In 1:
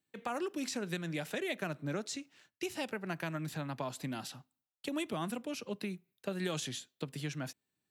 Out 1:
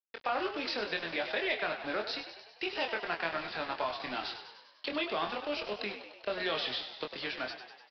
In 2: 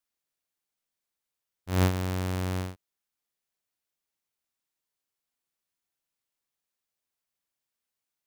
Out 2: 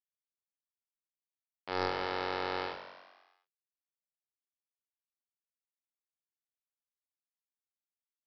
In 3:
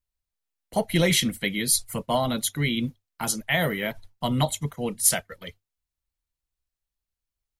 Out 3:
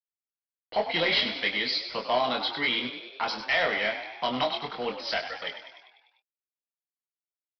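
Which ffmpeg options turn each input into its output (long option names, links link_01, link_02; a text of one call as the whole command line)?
ffmpeg -i in.wav -filter_complex "[0:a]highpass=530,asplit=2[link_01][link_02];[link_02]acompressor=threshold=-35dB:ratio=6,volume=1.5dB[link_03];[link_01][link_03]amix=inputs=2:normalize=0,acrusher=bits=6:mix=0:aa=0.000001,aresample=11025,asoftclip=type=tanh:threshold=-19.5dB,aresample=44100,asplit=2[link_04][link_05];[link_05]adelay=24,volume=-5dB[link_06];[link_04][link_06]amix=inputs=2:normalize=0,asplit=8[link_07][link_08][link_09][link_10][link_11][link_12][link_13][link_14];[link_08]adelay=99,afreqshift=51,volume=-10dB[link_15];[link_09]adelay=198,afreqshift=102,volume=-14.3dB[link_16];[link_10]adelay=297,afreqshift=153,volume=-18.6dB[link_17];[link_11]adelay=396,afreqshift=204,volume=-22.9dB[link_18];[link_12]adelay=495,afreqshift=255,volume=-27.2dB[link_19];[link_13]adelay=594,afreqshift=306,volume=-31.5dB[link_20];[link_14]adelay=693,afreqshift=357,volume=-35.8dB[link_21];[link_07][link_15][link_16][link_17][link_18][link_19][link_20][link_21]amix=inputs=8:normalize=0" out.wav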